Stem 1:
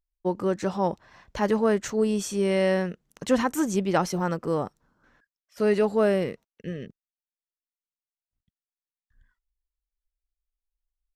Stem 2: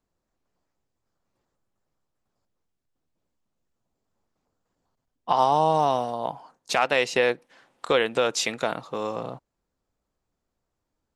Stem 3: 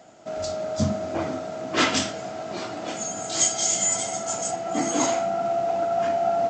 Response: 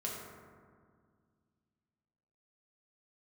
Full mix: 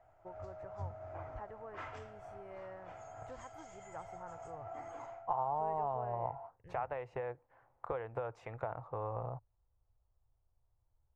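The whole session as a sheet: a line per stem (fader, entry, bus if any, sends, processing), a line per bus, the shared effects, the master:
-10.5 dB, 0.00 s, bus A, no send, bass shelf 450 Hz +7 dB
-1.5 dB, 0.00 s, no bus, no send, compression 6:1, threshold -26 dBFS, peak gain reduction 10.5 dB; tilt shelf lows +9 dB, about 1.2 kHz
-6.0 dB, 0.00 s, bus A, no send, auto duck -14 dB, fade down 0.35 s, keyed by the second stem
bus A: 0.0 dB, compression 2.5:1, threshold -33 dBFS, peak gain reduction 8 dB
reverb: none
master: FFT filter 110 Hz 0 dB, 200 Hz -28 dB, 860 Hz -5 dB, 2.2 kHz -13 dB, 3.9 kHz -30 dB

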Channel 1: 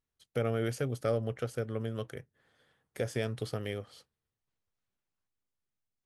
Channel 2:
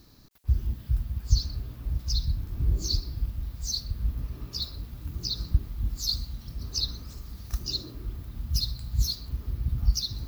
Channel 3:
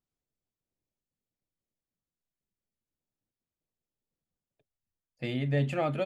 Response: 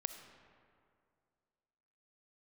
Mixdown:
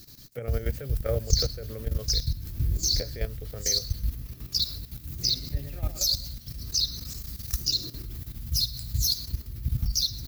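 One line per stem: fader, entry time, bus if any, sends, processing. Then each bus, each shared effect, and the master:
-6.0 dB, 0.00 s, no send, no echo send, graphic EQ 125/500/2000 Hz +10/+10/+10 dB
+1.5 dB, 0.00 s, no send, echo send -19.5 dB, tone controls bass 0 dB, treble +14 dB; graphic EQ 125/1000/2000 Hz +5/-5/+5 dB
-10.5 dB, 0.00 s, no send, echo send -7 dB, none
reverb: none
echo: feedback delay 106 ms, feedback 38%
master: level held to a coarse grid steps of 12 dB

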